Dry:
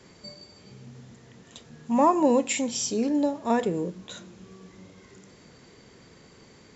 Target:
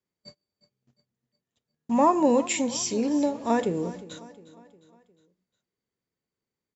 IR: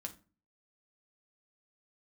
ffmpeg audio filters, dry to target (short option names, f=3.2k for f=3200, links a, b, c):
-filter_complex "[0:a]agate=range=-37dB:threshold=-40dB:ratio=16:detection=peak,asplit=2[a][b];[b]aecho=0:1:357|714|1071|1428:0.133|0.064|0.0307|0.0147[c];[a][c]amix=inputs=2:normalize=0"